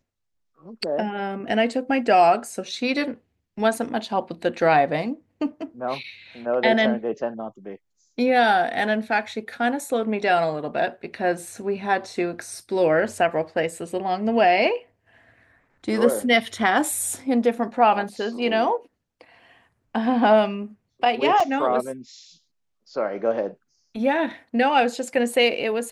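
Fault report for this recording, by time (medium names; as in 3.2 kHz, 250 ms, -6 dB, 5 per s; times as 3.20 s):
21.40 s: dropout 4.5 ms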